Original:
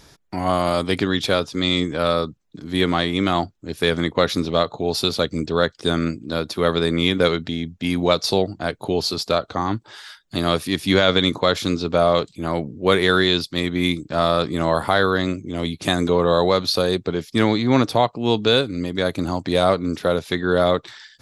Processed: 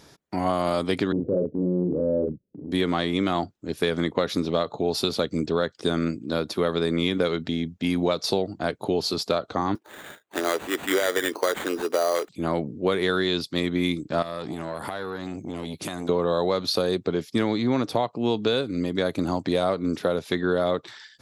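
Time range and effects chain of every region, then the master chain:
0:01.12–0:02.72: Butterworth low-pass 580 Hz 72 dB per octave + double-tracking delay 39 ms −4 dB + transient designer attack −5 dB, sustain +4 dB
0:09.75–0:12.29: Chebyshev high-pass filter 360 Hz, order 3 + sample-rate reduction 5,300 Hz
0:14.22–0:16.09: high-shelf EQ 10,000 Hz +11 dB + downward compressor 10 to 1, threshold −24 dBFS + saturating transformer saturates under 900 Hz
whole clip: high-pass filter 230 Hz 6 dB per octave; tilt shelving filter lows +3.5 dB, about 670 Hz; downward compressor, threshold −19 dBFS

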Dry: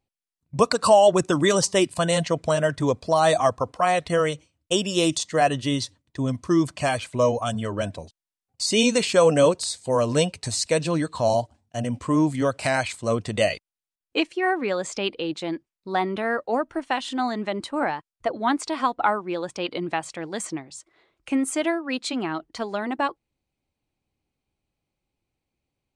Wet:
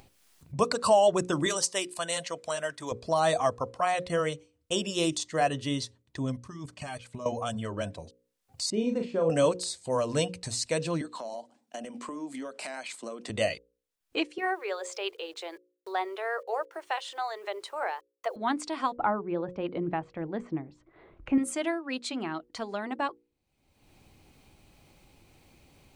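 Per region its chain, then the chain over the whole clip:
0:01.46–0:02.92: high-pass filter 910 Hz 6 dB per octave + high-shelf EQ 9,600 Hz +7.5 dB
0:06.37–0:07.26: output level in coarse steps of 15 dB + notch filter 510 Hz, Q 5.9 + notch comb filter 340 Hz
0:08.70–0:09.30: resonant band-pass 240 Hz, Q 0.66 + double-tracking delay 37 ms −6 dB
0:11.01–0:13.30: Butterworth high-pass 210 Hz + downward compressor, threshold −29 dBFS
0:14.38–0:18.36: elliptic high-pass filter 390 Hz + bit-depth reduction 10 bits, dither none
0:18.96–0:21.38: low-pass filter 2,400 Hz + spectral tilt −3 dB per octave
whole clip: mains-hum notches 60/120/180/240/300/360/420/480/540 Hz; upward compression, threshold −29 dBFS; level −6 dB

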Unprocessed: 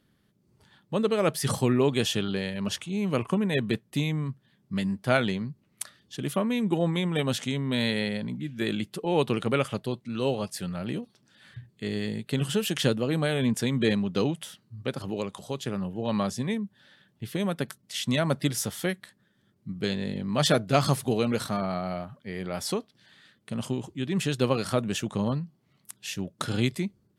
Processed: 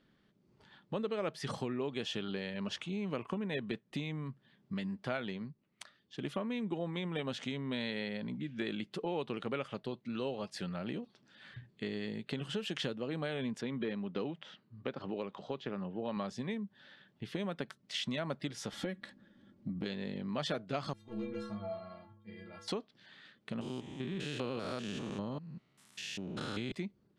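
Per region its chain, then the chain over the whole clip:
0:05.21–0:06.25: high-shelf EQ 10,000 Hz −5 dB + expander for the loud parts, over −43 dBFS
0:13.61–0:16.17: de-essing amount 90% + high-pass filter 140 Hz 6 dB per octave + high-frequency loss of the air 170 metres
0:18.72–0:19.86: low-shelf EQ 460 Hz +11.5 dB + comb filter 3.6 ms, depth 59% + downward compressor 2.5 to 1, threshold −27 dBFS
0:20.93–0:22.68: low-shelf EQ 420 Hz +8 dB + hard clipping −13.5 dBFS + stiff-string resonator 100 Hz, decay 0.84 s, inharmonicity 0.03
0:23.61–0:26.72: spectrum averaged block by block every 200 ms + high-shelf EQ 7,300 Hz +9.5 dB
whole clip: low-pass filter 4,300 Hz 12 dB per octave; downward compressor 4 to 1, threshold −34 dBFS; parametric band 90 Hz −9 dB 1.4 octaves

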